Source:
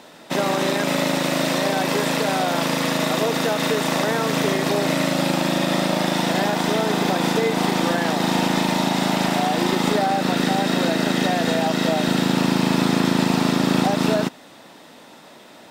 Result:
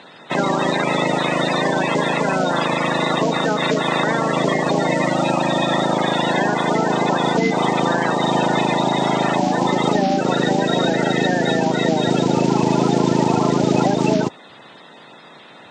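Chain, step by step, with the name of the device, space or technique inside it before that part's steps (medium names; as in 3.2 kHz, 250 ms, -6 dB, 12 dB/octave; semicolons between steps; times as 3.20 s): clip after many re-uploads (low-pass 6.4 kHz 24 dB/octave; coarse spectral quantiser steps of 30 dB); trim +3 dB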